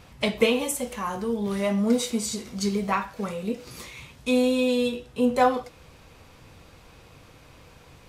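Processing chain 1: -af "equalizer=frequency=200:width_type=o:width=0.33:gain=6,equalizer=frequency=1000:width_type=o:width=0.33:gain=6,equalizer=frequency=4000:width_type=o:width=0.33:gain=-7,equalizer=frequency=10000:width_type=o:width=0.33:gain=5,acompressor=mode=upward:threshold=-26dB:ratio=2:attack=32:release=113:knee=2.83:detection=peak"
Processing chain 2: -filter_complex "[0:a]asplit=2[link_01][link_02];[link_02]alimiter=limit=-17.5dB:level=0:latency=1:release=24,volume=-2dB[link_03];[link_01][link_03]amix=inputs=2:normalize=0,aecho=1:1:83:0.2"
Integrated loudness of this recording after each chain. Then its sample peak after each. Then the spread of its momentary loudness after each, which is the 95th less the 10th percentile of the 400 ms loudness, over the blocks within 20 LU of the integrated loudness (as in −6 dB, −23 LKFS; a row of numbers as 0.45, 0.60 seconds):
−23.5, −21.5 LKFS; −5.0, −4.5 dBFS; 18, 11 LU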